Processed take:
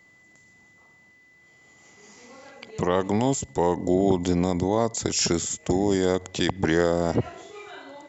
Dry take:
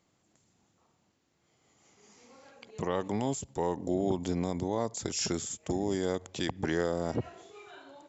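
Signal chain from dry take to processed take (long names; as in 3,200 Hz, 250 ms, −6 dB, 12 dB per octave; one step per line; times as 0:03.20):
steady tone 2,000 Hz −63 dBFS
level +8.5 dB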